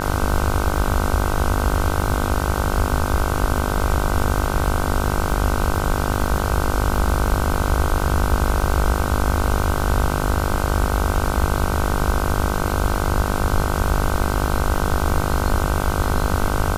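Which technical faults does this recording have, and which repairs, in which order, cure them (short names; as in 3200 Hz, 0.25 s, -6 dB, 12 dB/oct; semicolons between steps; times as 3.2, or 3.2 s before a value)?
buzz 50 Hz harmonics 31 -24 dBFS
crackle 34/s -26 dBFS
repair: de-click; de-hum 50 Hz, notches 31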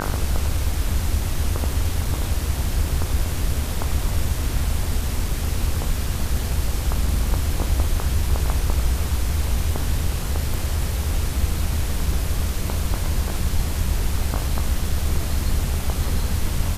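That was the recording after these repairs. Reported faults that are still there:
none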